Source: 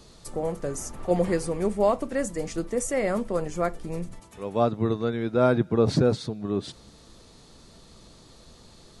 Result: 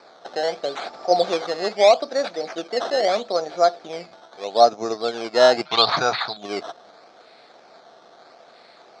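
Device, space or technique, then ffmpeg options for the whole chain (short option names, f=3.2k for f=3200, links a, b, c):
circuit-bent sampling toy: -filter_complex "[0:a]acrusher=samples=13:mix=1:aa=0.000001:lfo=1:lforange=13:lforate=0.78,highpass=600,equalizer=f=700:t=q:w=4:g=9,equalizer=f=1k:t=q:w=4:g=-7,equalizer=f=1.9k:t=q:w=4:g=-7,equalizer=f=2.8k:t=q:w=4:g=-10,equalizer=f=4.3k:t=q:w=4:g=4,lowpass=f=5.2k:w=0.5412,lowpass=f=5.2k:w=1.3066,asettb=1/sr,asplit=3[a][b][c];[a]atrim=end=5.654[d];[b]atrim=start=5.65:end=6.37,asetpts=PTS-STARTPTS,afade=t=in:d=0.004:c=qsin,afade=t=out:st=0.716:d=0.004:c=qsin,equalizer=f=125:t=o:w=1:g=6,equalizer=f=250:t=o:w=1:g=-6,equalizer=f=500:t=o:w=1:g=-9,equalizer=f=1k:t=o:w=1:g=12,equalizer=f=2k:t=o:w=1:g=7,equalizer=f=4k:t=o:w=1:g=11,equalizer=f=8k:t=o:w=1:g=-9[e];[c]atrim=start=6.366[f];[d][e]acrossfade=d=0.004:c1=hsin:c2=qsin[g];[g][f]acrossfade=d=0.004:c1=qsin:c2=hsin,volume=8dB"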